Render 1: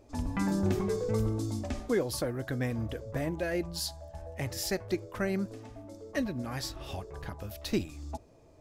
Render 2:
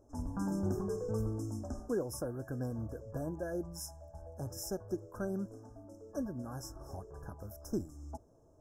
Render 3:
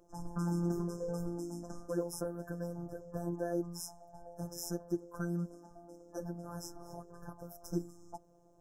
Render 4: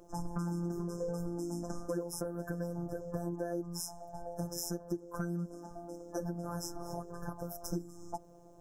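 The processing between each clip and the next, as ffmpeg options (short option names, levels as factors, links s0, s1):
-af "afftfilt=real='re*(1-between(b*sr/4096,1700,5100))':imag='im*(1-between(b*sr/4096,1700,5100))':win_size=4096:overlap=0.75,equalizer=f=2500:t=o:w=0.85:g=-14,volume=0.531"
-af "afftfilt=real='hypot(re,im)*cos(PI*b)':imag='0':win_size=1024:overlap=0.75,volume=1.5"
-af "acompressor=threshold=0.00891:ratio=6,volume=2.51"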